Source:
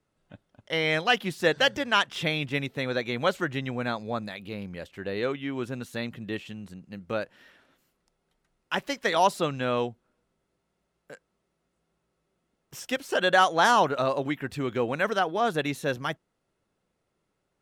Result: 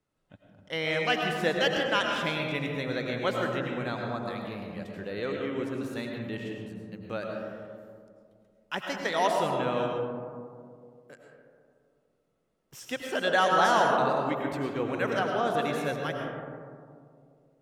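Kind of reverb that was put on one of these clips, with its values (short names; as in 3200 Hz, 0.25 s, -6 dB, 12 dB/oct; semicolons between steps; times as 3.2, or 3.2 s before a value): digital reverb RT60 2.3 s, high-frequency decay 0.25×, pre-delay 65 ms, DRR 0.5 dB; gain -5 dB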